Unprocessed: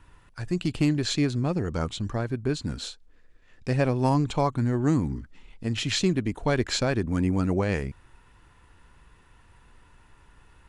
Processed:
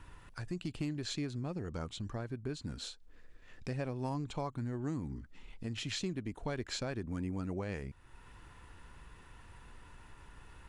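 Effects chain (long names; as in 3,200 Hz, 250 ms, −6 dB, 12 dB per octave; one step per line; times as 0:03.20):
downward compressor 2 to 1, threshold −49 dBFS, peak gain reduction 16.5 dB
level +1.5 dB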